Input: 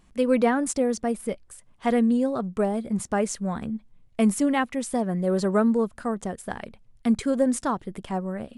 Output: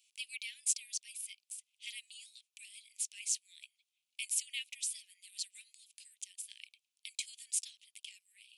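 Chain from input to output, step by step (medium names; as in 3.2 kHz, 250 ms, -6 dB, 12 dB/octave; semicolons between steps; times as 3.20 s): steep high-pass 2.4 kHz 72 dB/octave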